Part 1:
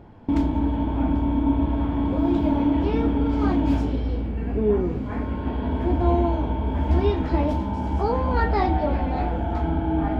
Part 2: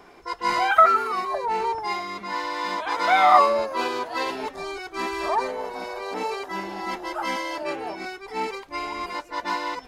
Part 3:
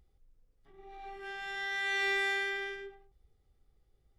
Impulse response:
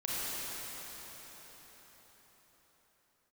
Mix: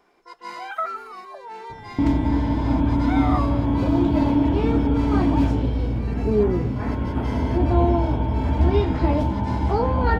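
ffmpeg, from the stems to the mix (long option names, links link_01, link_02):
-filter_complex "[0:a]adelay=1700,volume=1.5dB[link_01];[1:a]highpass=frequency=170:width=0.5412,highpass=frequency=170:width=1.3066,volume=-12dB[link_02];[2:a]volume=-15.5dB[link_03];[link_01][link_02][link_03]amix=inputs=3:normalize=0,equalizer=frequency=120:width_type=o:width=0.3:gain=11"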